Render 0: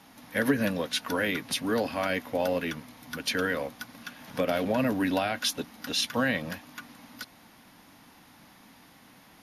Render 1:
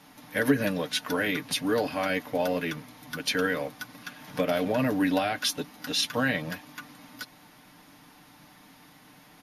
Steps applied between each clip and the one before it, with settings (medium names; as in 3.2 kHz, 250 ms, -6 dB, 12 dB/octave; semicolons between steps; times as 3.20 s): comb 6.7 ms, depth 48%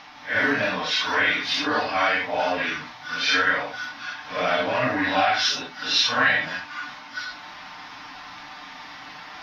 phase randomisation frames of 200 ms; FFT filter 100 Hz 0 dB, 150 Hz -7 dB, 260 Hz -3 dB, 490 Hz -3 dB, 690 Hz +7 dB, 1.2 kHz +11 dB, 5.6 kHz +7 dB, 9.1 kHz -28 dB, 14 kHz -17 dB; reverse; upward compressor, threshold -31 dBFS; reverse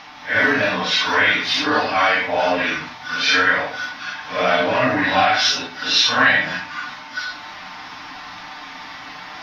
reverberation RT60 0.55 s, pre-delay 8 ms, DRR 9 dB; trim +4.5 dB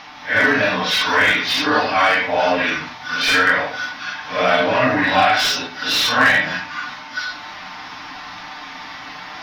slew-rate limiter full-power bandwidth 550 Hz; trim +1.5 dB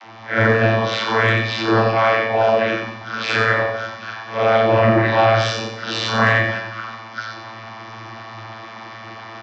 vocoder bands 32, saw 112 Hz; on a send: feedback delay 91 ms, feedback 40%, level -6 dB